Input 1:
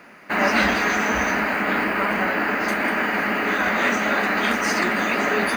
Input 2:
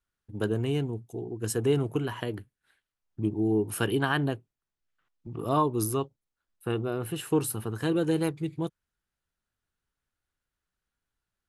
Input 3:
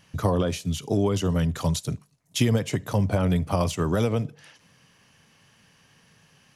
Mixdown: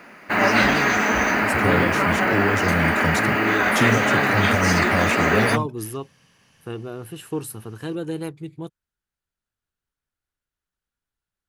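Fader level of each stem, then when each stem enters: +1.5, -2.5, 0.0 dB; 0.00, 0.00, 1.40 s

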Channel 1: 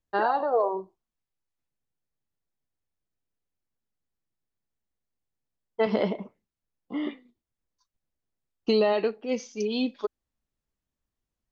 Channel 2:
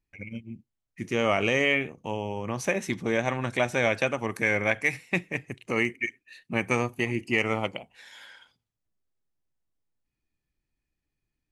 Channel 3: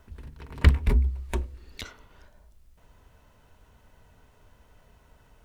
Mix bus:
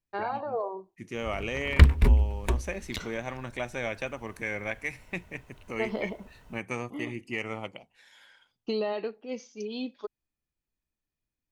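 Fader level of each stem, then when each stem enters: -7.5, -8.5, +2.0 dB; 0.00, 0.00, 1.15 s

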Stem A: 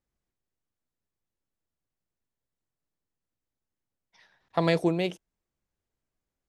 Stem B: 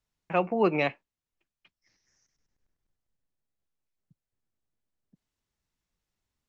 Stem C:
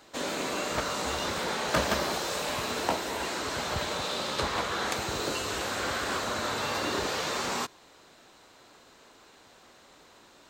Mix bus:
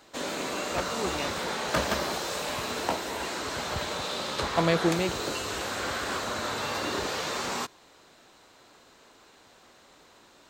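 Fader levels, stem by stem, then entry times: -0.5, -9.5, -0.5 dB; 0.00, 0.40, 0.00 s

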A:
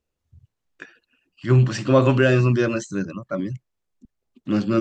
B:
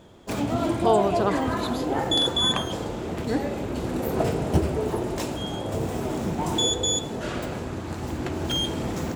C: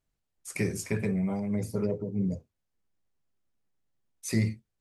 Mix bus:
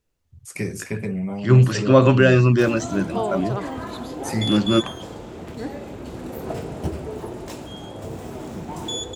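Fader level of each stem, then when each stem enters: +2.5, -5.5, +2.0 dB; 0.00, 2.30, 0.00 s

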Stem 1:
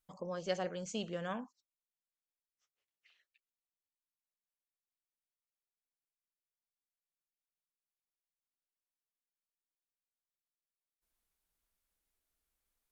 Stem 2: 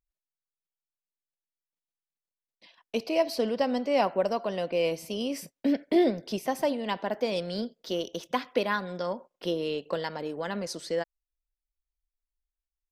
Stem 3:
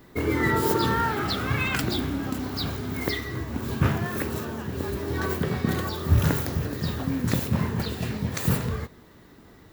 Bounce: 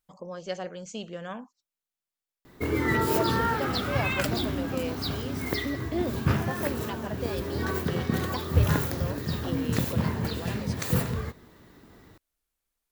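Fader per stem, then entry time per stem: +2.0, -7.5, -2.0 dB; 0.00, 0.00, 2.45 s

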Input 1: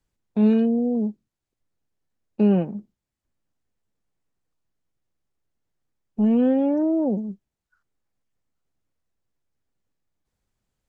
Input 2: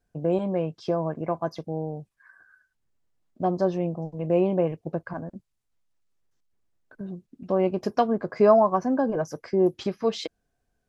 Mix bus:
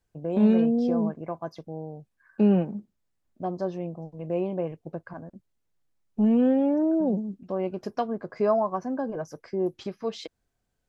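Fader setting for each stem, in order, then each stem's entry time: -2.0, -6.0 dB; 0.00, 0.00 s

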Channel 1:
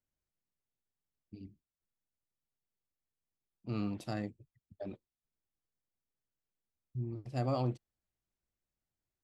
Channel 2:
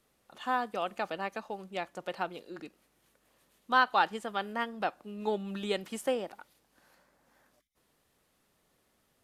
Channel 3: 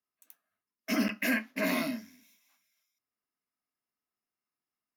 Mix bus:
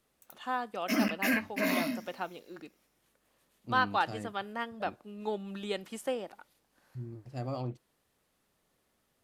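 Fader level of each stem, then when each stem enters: -3.5, -3.0, 0.0 dB; 0.00, 0.00, 0.00 s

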